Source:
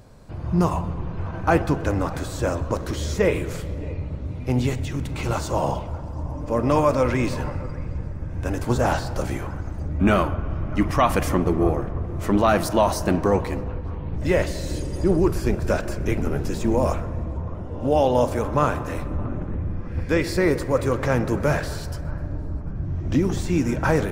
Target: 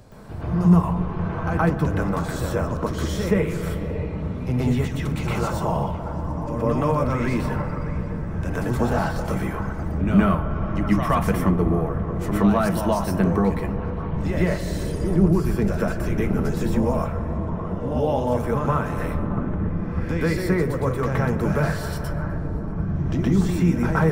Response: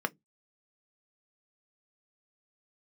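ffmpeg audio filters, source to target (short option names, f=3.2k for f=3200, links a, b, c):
-filter_complex "[0:a]acrossover=split=170[a][b];[b]acompressor=threshold=-37dB:ratio=2[c];[a][c]amix=inputs=2:normalize=0,asplit=2[d][e];[1:a]atrim=start_sample=2205,highshelf=f=10k:g=12,adelay=120[f];[e][f]afir=irnorm=-1:irlink=0,volume=0.5dB[g];[d][g]amix=inputs=2:normalize=0"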